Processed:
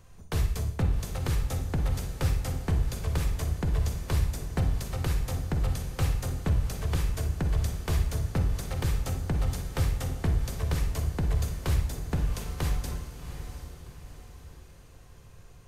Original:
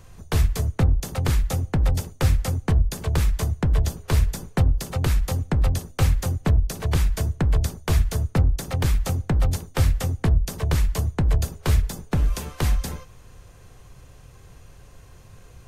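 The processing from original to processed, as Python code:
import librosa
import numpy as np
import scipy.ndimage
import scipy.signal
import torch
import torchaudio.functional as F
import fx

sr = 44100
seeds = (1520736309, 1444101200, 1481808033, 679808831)

y = fx.echo_diffused(x, sr, ms=726, feedback_pct=47, wet_db=-10)
y = fx.rev_schroeder(y, sr, rt60_s=0.66, comb_ms=38, drr_db=6.5)
y = F.gain(torch.from_numpy(y), -7.5).numpy()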